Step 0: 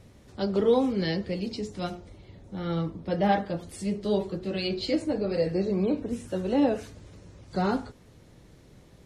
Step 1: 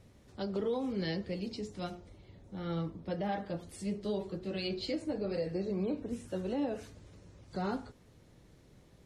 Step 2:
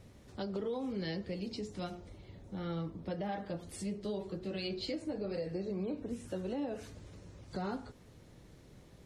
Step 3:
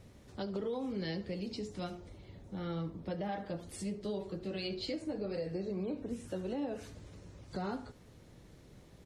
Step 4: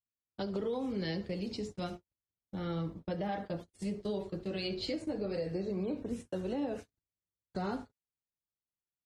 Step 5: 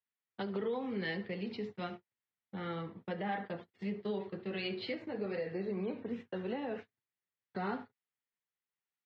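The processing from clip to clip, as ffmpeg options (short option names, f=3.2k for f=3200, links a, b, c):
-af "alimiter=limit=-19dB:level=0:latency=1:release=167,volume=-6.5dB"
-af "acompressor=threshold=-42dB:ratio=2,volume=3dB"
-af "aecho=1:1:73:0.126"
-af "agate=range=-53dB:threshold=-43dB:ratio=16:detection=peak,volume=2dB"
-af "highpass=f=130:w=0.5412,highpass=f=130:w=1.3066,equalizer=f=160:t=q:w=4:g=-9,equalizer=f=300:t=q:w=4:g=-10,equalizer=f=590:t=q:w=4:g=-7,equalizer=f=1.9k:t=q:w=4:g=6,lowpass=f=3.4k:w=0.5412,lowpass=f=3.4k:w=1.3066,volume=2dB"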